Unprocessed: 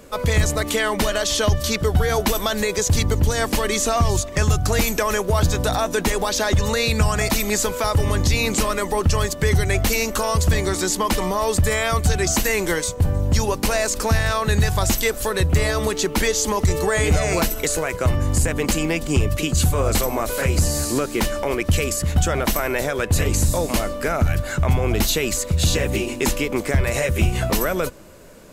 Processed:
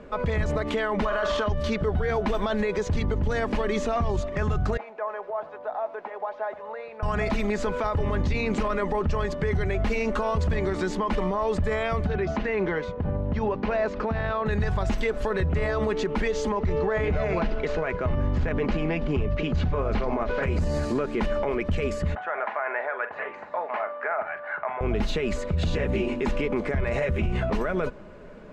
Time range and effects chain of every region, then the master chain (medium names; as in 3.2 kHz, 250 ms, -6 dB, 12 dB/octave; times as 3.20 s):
1.05–1.46 s: peaking EQ 1.1 kHz +12.5 dB 1.1 oct + flutter echo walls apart 7.9 m, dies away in 0.3 s
4.77–7.03 s: ladder band-pass 840 Hz, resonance 40% + bit-crushed delay 88 ms, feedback 35%, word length 7-bit, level -15 dB
12.04–14.46 s: high-pass 83 Hz 6 dB/octave + distance through air 200 m + compression 4:1, threshold -21 dBFS
16.52–20.43 s: median filter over 5 samples + low-pass 7.2 kHz 24 dB/octave
22.15–24.81 s: Chebyshev band-pass 720–1900 Hz + doubling 45 ms -12 dB
whole clip: low-pass 2.1 kHz 12 dB/octave; comb 4.8 ms, depth 34%; peak limiter -17.5 dBFS